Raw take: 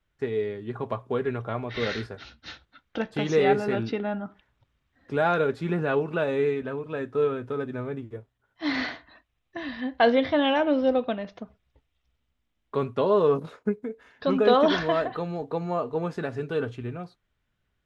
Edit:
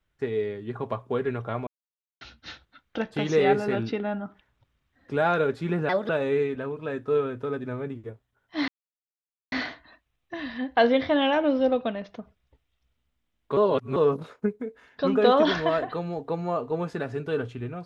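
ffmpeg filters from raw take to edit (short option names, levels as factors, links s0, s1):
-filter_complex "[0:a]asplit=8[s0][s1][s2][s3][s4][s5][s6][s7];[s0]atrim=end=1.67,asetpts=PTS-STARTPTS,afade=t=out:st=1.666:d=0.004:c=hsin[s8];[s1]atrim=start=1.67:end=2.21,asetpts=PTS-STARTPTS,volume=0[s9];[s2]atrim=start=2.21:end=5.894,asetpts=PTS-STARTPTS,afade=t=in:d=0.004:c=hsin[s10];[s3]atrim=start=5.89:end=6.16,asetpts=PTS-STARTPTS,asetrate=59535,aresample=44100[s11];[s4]atrim=start=6.156:end=8.75,asetpts=PTS-STARTPTS,afade=t=out:st=2.59:d=0.004:c=hsin,apad=pad_dur=0.84[s12];[s5]atrim=start=8.75:end=12.802,asetpts=PTS-STARTPTS,afade=t=in:d=0.004:c=hsin[s13];[s6]atrim=start=12.798:end=13.192,asetpts=PTS-STARTPTS,areverse[s14];[s7]atrim=start=13.188[s15];[s8][s9][s10]concat=n=3:v=0:a=1[s16];[s16][s11]acrossfade=d=0.004:c1=hsin:c2=hsin[s17];[s12][s13]concat=n=2:v=0:a=1[s18];[s17][s18]acrossfade=d=0.004:c1=hsin:c2=hsin[s19];[s19][s14]acrossfade=d=0.004:c1=hsin:c2=hsin[s20];[s20][s15]acrossfade=d=0.004:c1=hsin:c2=hsin"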